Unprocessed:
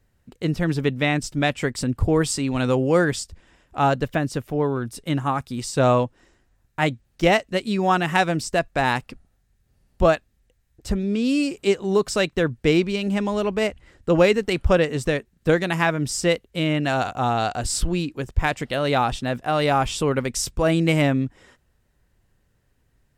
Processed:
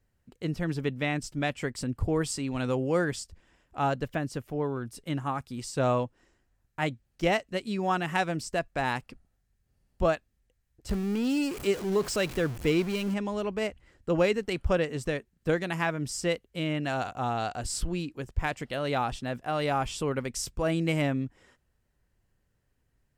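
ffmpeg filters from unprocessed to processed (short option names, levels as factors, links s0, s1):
-filter_complex "[0:a]asettb=1/sr,asplit=3[s0][s1][s2];[s0]atrim=end=10.894[s3];[s1]atrim=start=10.89:end=13.14,asetpts=PTS-STARTPTS,afade=t=in:d=0.004:c=qsin,afade=t=out:st=2.246:d=0.004:c=qsin,aeval=exprs='val(0)+0.5*0.0473*sgn(val(0))':c=same[s4];[s2]atrim=start=13.136[s5];[s3][s4]acrossfade=d=0.004:c1=hsin:c2=qsin[s6];[s6][s5]acrossfade=d=0.004:c1=qsin:c2=hsin,bandreject=f=3700:w=21,volume=0.398"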